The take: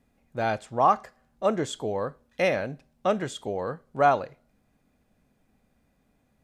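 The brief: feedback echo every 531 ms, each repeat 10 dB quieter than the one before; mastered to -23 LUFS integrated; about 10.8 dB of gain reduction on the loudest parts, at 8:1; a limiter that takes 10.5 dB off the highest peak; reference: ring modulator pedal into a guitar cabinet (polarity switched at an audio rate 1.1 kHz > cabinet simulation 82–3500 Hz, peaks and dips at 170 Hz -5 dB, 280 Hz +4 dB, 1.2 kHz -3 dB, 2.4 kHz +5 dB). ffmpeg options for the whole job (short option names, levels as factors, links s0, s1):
-af "acompressor=threshold=0.0501:ratio=8,alimiter=level_in=1.33:limit=0.0631:level=0:latency=1,volume=0.75,aecho=1:1:531|1062|1593|2124:0.316|0.101|0.0324|0.0104,aeval=exprs='val(0)*sgn(sin(2*PI*1100*n/s))':c=same,highpass=82,equalizer=f=170:t=q:w=4:g=-5,equalizer=f=280:t=q:w=4:g=4,equalizer=f=1200:t=q:w=4:g=-3,equalizer=f=2400:t=q:w=4:g=5,lowpass=f=3500:w=0.5412,lowpass=f=3500:w=1.3066,volume=5.31"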